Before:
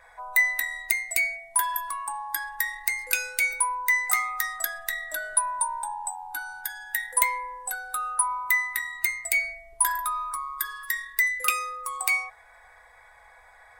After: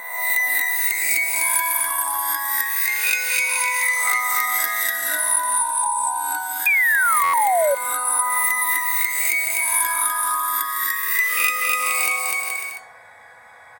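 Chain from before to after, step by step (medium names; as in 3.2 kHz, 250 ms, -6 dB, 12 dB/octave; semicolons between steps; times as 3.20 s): reverse spectral sustain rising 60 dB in 0.92 s; in parallel at -9.5 dB: saturation -14 dBFS, distortion -16 dB; 2.86–4.20 s: on the sum: frequency weighting A; phaser 0.24 Hz, delay 1.6 ms, feedback 26%; high-pass 100 Hz 24 dB/octave; peaking EQ 250 Hz +9 dB 1.6 oct; on a send: bouncing-ball echo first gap 250 ms, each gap 0.7×, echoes 5; 6.66–7.75 s: on the sum: painted sound fall 540–2500 Hz -12 dBFS; compression 4:1, threshold -16 dBFS, peak gain reduction 8 dB; buffer glitch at 7.23 s, samples 512, times 8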